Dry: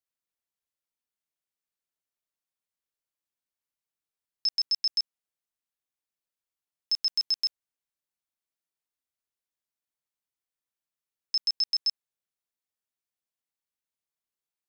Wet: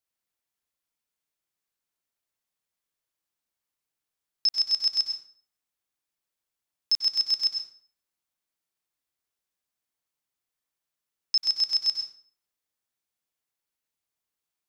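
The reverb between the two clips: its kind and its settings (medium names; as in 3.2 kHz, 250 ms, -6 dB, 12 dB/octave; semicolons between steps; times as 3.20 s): plate-style reverb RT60 0.52 s, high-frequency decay 0.75×, pre-delay 85 ms, DRR 5 dB; trim +3.5 dB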